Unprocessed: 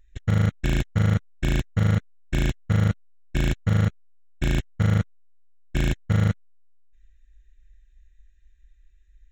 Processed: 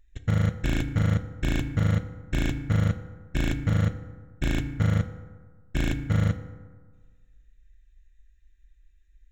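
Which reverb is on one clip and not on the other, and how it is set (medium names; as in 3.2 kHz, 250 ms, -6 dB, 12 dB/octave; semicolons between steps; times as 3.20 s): FDN reverb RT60 1.5 s, low-frequency decay 1.05×, high-frequency decay 0.45×, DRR 8.5 dB; trim -2.5 dB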